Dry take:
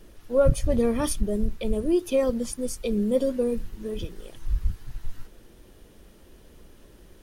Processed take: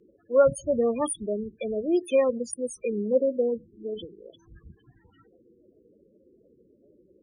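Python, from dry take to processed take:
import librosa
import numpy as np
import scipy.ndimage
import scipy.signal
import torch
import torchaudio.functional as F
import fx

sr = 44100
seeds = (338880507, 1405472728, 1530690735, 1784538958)

y = fx.spec_topn(x, sr, count=16)
y = fx.weighting(y, sr, curve='A')
y = y * librosa.db_to_amplitude(4.5)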